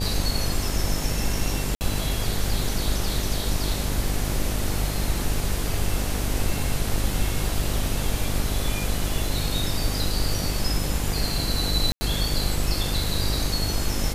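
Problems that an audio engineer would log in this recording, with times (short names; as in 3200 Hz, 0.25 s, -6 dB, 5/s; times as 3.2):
buzz 50 Hz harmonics 17 -29 dBFS
1.75–1.81 gap 59 ms
11.92–12.01 gap 90 ms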